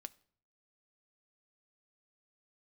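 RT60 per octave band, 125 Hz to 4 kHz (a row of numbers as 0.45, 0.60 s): 0.80, 0.65, 0.60, 0.55, 0.45, 0.45 s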